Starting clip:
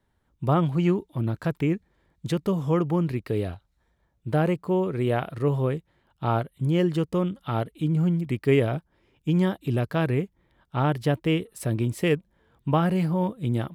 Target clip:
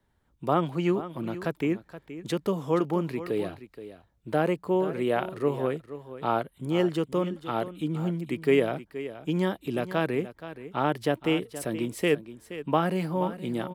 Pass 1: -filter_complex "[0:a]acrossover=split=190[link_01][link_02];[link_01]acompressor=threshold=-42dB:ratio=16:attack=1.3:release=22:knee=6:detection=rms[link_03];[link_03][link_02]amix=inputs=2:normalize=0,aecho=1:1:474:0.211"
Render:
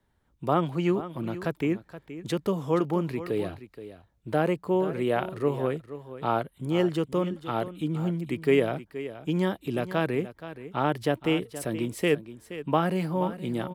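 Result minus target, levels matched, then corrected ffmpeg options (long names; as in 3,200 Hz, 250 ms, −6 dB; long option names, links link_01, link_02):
downward compressor: peak gain reduction −7 dB
-filter_complex "[0:a]acrossover=split=190[link_01][link_02];[link_01]acompressor=threshold=-49.5dB:ratio=16:attack=1.3:release=22:knee=6:detection=rms[link_03];[link_03][link_02]amix=inputs=2:normalize=0,aecho=1:1:474:0.211"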